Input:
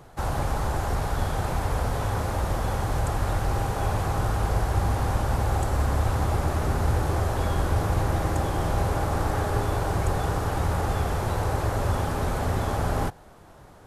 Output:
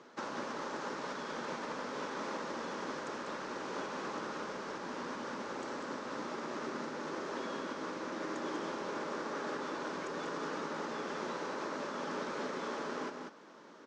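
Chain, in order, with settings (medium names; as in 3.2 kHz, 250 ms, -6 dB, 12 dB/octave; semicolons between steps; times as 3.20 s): compression, threshold -27 dBFS, peak gain reduction 9 dB; elliptic band-pass 230–6000 Hz, stop band 40 dB; peaking EQ 740 Hz -14.5 dB 0.28 oct; delay 194 ms -5.5 dB; trim -2 dB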